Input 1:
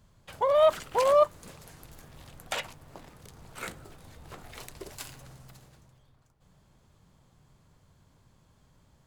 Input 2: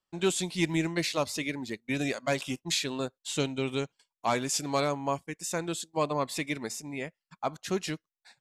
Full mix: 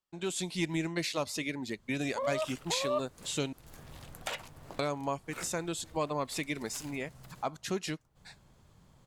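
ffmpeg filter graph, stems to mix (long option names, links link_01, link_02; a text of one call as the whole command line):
ffmpeg -i stem1.wav -i stem2.wav -filter_complex "[0:a]adelay=1750,volume=1dB[link_01];[1:a]dynaudnorm=framelen=210:gausssize=3:maxgain=9.5dB,volume=-5.5dB,asplit=3[link_02][link_03][link_04];[link_02]atrim=end=3.53,asetpts=PTS-STARTPTS,afade=type=out:start_time=3.526:duration=0.004:curve=hsin[link_05];[link_03]atrim=start=3.53:end=4.79,asetpts=PTS-STARTPTS,volume=0[link_06];[link_04]atrim=start=4.79,asetpts=PTS-STARTPTS,afade=type=in:duration=0.004:curve=hsin[link_07];[link_05][link_06][link_07]concat=n=3:v=0:a=1,asplit=2[link_08][link_09];[link_09]apad=whole_len=477141[link_10];[link_01][link_10]sidechaincompress=threshold=-28dB:ratio=8:attack=27:release=432[link_11];[link_11][link_08]amix=inputs=2:normalize=0,acompressor=threshold=-43dB:ratio=1.5" out.wav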